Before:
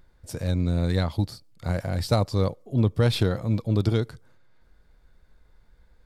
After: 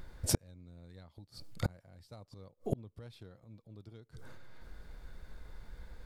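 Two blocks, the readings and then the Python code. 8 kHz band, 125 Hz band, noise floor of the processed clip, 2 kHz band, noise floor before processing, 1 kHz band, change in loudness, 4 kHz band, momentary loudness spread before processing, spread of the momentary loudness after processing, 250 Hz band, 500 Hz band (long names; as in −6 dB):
+1.5 dB, −18.5 dB, −72 dBFS, −15.0 dB, −59 dBFS, −17.0 dB, −14.5 dB, −13.5 dB, 9 LU, 21 LU, −17.5 dB, −17.5 dB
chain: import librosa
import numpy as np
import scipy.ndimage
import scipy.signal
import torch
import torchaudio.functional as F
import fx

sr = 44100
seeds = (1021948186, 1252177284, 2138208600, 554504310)

y = fx.gate_flip(x, sr, shuts_db=-26.0, range_db=-38)
y = y * 10.0 ** (8.5 / 20.0)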